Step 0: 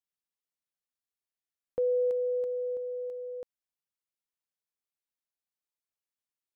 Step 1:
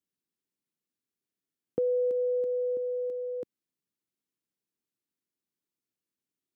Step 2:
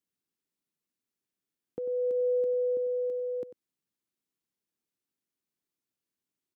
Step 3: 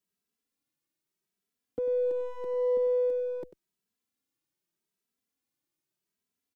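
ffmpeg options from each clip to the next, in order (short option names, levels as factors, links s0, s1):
-af "highpass=130,lowshelf=f=470:t=q:w=1.5:g=11.5,acompressor=threshold=0.0447:ratio=2.5"
-af "alimiter=level_in=1.06:limit=0.0631:level=0:latency=1:release=489,volume=0.944,aecho=1:1:95:0.224"
-filter_complex "[0:a]asplit=2[s0][s1];[s1]aeval=exprs='clip(val(0),-1,0.00794)':c=same,volume=0.376[s2];[s0][s2]amix=inputs=2:normalize=0,asplit=2[s3][s4];[s4]adelay=2.7,afreqshift=0.83[s5];[s3][s5]amix=inputs=2:normalize=1,volume=1.33"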